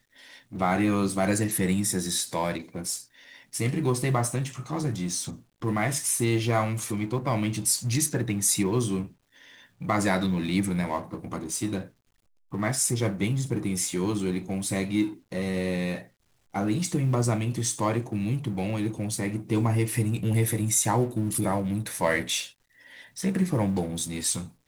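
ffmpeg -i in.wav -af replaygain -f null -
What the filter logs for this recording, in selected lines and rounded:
track_gain = +9.1 dB
track_peak = 0.220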